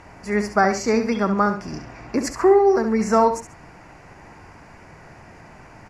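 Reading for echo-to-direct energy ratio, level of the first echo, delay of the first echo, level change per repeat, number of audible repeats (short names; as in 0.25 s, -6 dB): -8.5 dB, -9.0 dB, 68 ms, -10.5 dB, 2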